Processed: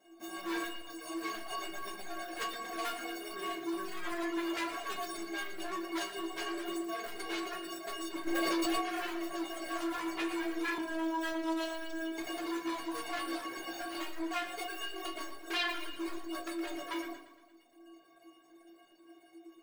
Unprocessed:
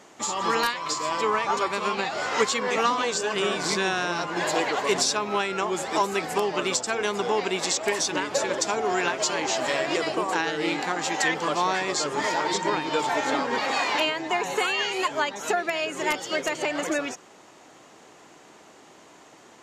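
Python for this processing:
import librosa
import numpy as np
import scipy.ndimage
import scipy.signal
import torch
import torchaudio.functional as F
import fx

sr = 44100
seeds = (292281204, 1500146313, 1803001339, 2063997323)

p1 = scipy.ndimage.median_filter(x, 41, mode='constant')
p2 = fx.high_shelf(p1, sr, hz=3200.0, db=-11.5)
p3 = fx.stiff_resonator(p2, sr, f0_hz=330.0, decay_s=0.45, stiffness=0.03)
p4 = fx.fold_sine(p3, sr, drive_db=15, ceiling_db=-29.5)
p5 = p3 + (p4 * librosa.db_to_amplitude(-4.5))
p6 = fx.tilt_eq(p5, sr, slope=4.0)
p7 = fx.doubler(p6, sr, ms=15.0, db=-7.0)
p8 = fx.echo_feedback(p7, sr, ms=116, feedback_pct=58, wet_db=-7.0)
p9 = fx.dereverb_blind(p8, sr, rt60_s=0.98)
p10 = fx.robotise(p9, sr, hz=324.0, at=(10.78, 12.18))
p11 = fx.room_shoebox(p10, sr, seeds[0], volume_m3=93.0, walls='mixed', distance_m=0.52)
y = fx.env_flatten(p11, sr, amount_pct=100, at=(8.26, 8.8), fade=0.02)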